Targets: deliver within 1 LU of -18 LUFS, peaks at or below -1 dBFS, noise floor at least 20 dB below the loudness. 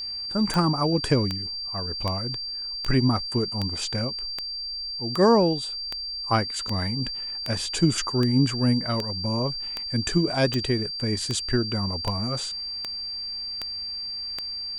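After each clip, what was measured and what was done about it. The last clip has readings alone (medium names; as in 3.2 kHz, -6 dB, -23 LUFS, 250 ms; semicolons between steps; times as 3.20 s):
clicks found 19; steady tone 4.7 kHz; tone level -30 dBFS; loudness -25.5 LUFS; peak level -8.5 dBFS; loudness target -18.0 LUFS
-> de-click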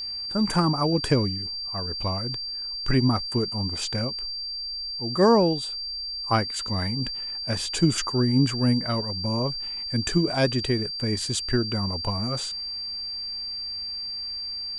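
clicks found 0; steady tone 4.7 kHz; tone level -30 dBFS
-> band-stop 4.7 kHz, Q 30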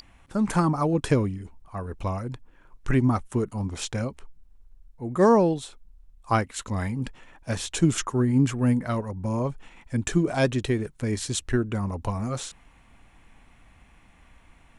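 steady tone not found; loudness -26.0 LUFS; peak level -8.0 dBFS; loudness target -18.0 LUFS
-> trim +8 dB; peak limiter -1 dBFS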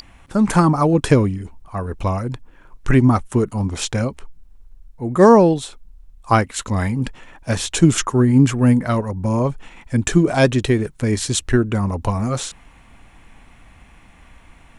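loudness -18.0 LUFS; peak level -1.0 dBFS; noise floor -48 dBFS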